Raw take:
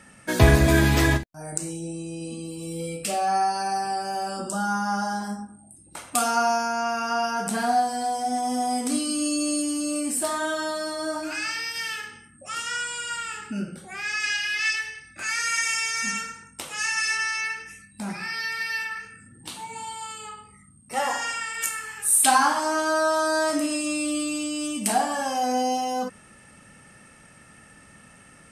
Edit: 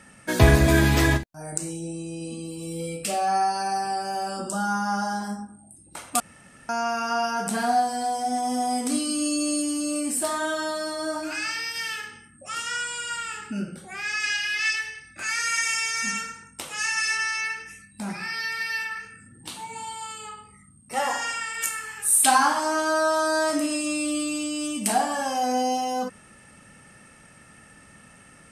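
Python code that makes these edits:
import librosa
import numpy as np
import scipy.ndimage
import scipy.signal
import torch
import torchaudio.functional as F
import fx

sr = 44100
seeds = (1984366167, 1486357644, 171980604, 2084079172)

y = fx.edit(x, sr, fx.room_tone_fill(start_s=6.2, length_s=0.49), tone=tone)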